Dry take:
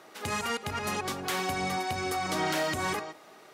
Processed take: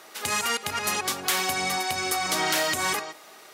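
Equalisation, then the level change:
spectral tilt +2.5 dB per octave
+3.5 dB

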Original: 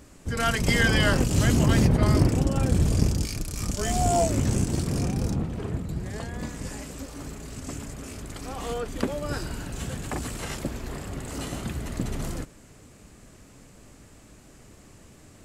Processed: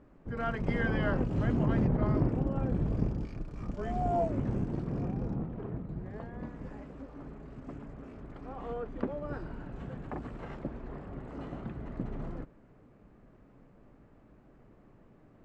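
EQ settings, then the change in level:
low-pass filter 1,300 Hz 12 dB per octave
parametric band 79 Hz −14 dB 0.38 octaves
−6.0 dB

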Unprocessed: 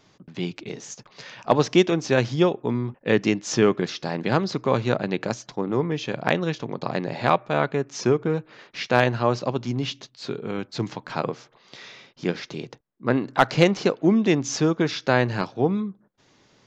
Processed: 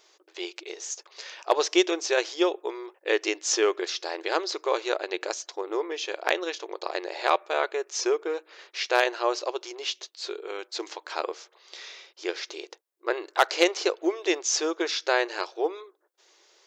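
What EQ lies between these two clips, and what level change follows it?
linear-phase brick-wall high-pass 320 Hz
high-shelf EQ 3,900 Hz +11 dB
−3.5 dB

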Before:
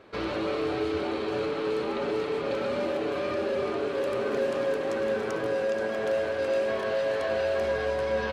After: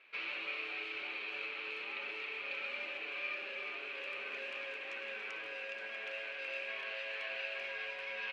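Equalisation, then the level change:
resonant band-pass 2,500 Hz, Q 6.2
+6.5 dB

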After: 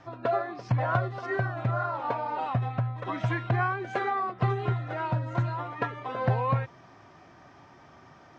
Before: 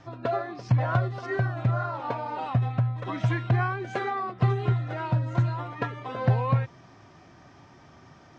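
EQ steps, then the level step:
low-shelf EQ 420 Hz −9.5 dB
high-shelf EQ 2,400 Hz −9.5 dB
+4.5 dB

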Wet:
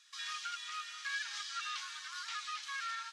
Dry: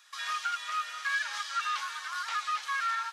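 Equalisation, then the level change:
high-pass filter 760 Hz 6 dB per octave
high-frequency loss of the air 99 metres
first difference
+5.5 dB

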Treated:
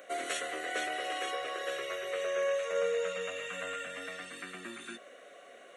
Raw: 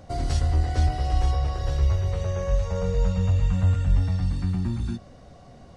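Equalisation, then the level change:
high-pass filter 490 Hz 24 dB per octave
phaser with its sweep stopped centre 2,100 Hz, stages 4
+8.0 dB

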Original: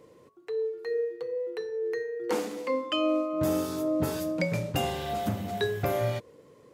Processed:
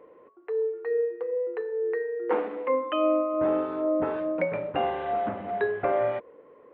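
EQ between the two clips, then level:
Gaussian smoothing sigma 4.5 samples
parametric band 120 Hz −12.5 dB 1.6 octaves
low-shelf EQ 260 Hz −12 dB
+8.0 dB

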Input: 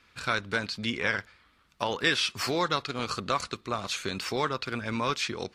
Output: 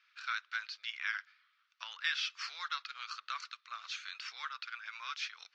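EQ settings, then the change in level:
elliptic band-pass filter 1,300–6,000 Hz, stop band 80 dB
high-frequency loss of the air 55 metres
−6.5 dB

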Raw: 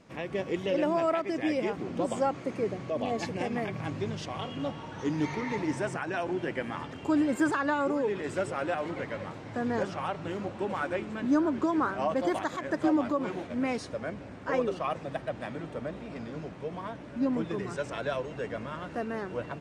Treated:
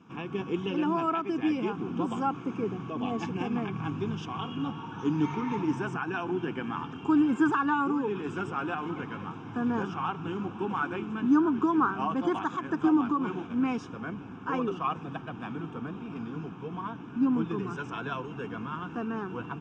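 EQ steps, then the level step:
band-pass filter 150–5,000 Hz
high-shelf EQ 2,100 Hz −8 dB
phaser with its sweep stopped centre 2,900 Hz, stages 8
+6.5 dB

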